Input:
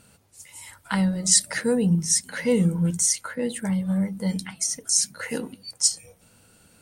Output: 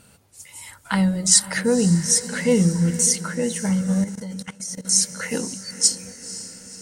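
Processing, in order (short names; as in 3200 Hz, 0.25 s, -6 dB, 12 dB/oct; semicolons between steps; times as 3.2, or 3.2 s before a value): diffused feedback echo 0.51 s, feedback 57%, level -14 dB; 4.04–4.85 level quantiser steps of 17 dB; gain +3 dB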